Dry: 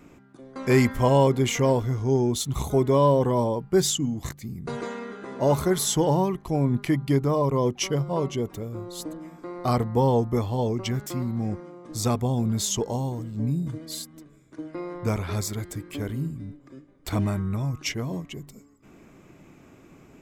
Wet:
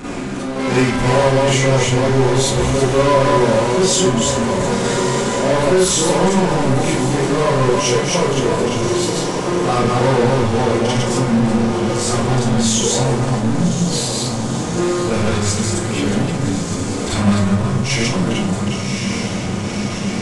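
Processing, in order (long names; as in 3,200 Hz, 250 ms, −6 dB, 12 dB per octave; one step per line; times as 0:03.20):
delay that plays each chunk backwards 185 ms, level −3 dB
feedback delay with all-pass diffusion 1,091 ms, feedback 56%, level −12.5 dB
power curve on the samples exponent 0.35
four-comb reverb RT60 0.37 s, combs from 31 ms, DRR −8 dB
downsampling to 22,050 Hz
level −10.5 dB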